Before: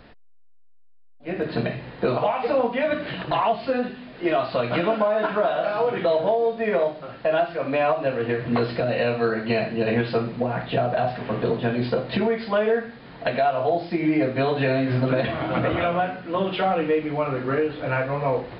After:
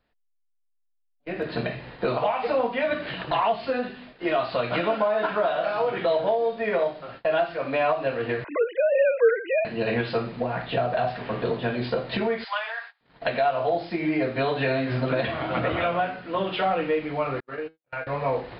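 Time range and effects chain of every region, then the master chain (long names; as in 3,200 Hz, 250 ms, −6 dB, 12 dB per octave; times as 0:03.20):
0:08.44–0:09.65: three sine waves on the formant tracks + high-pass filter 190 Hz + comb filter 2 ms, depth 73%
0:12.44–0:13.01: Butterworth high-pass 790 Hz + dynamic equaliser 4,700 Hz, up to +4 dB, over −43 dBFS, Q 0.72
0:17.40–0:18.07: noise gate −24 dBFS, range −44 dB + low-shelf EQ 250 Hz −5 dB + tuned comb filter 160 Hz, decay 0.25 s
whole clip: noise gate −40 dBFS, range −23 dB; parametric band 190 Hz −5 dB 2.9 octaves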